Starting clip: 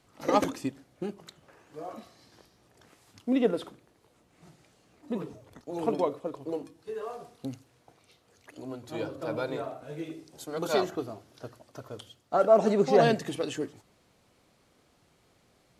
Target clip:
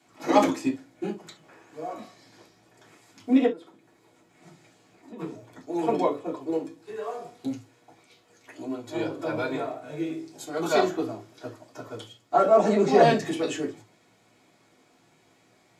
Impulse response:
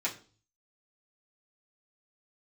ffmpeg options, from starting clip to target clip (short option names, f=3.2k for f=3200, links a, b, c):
-filter_complex "[0:a]asplit=3[a][b][c];[a]afade=t=out:st=3.45:d=0.02[d];[b]acompressor=threshold=-44dB:ratio=6,afade=t=in:st=3.45:d=0.02,afade=t=out:st=5.18:d=0.02[e];[c]afade=t=in:st=5.18:d=0.02[f];[d][e][f]amix=inputs=3:normalize=0[g];[1:a]atrim=start_sample=2205,atrim=end_sample=3528[h];[g][h]afir=irnorm=-1:irlink=0"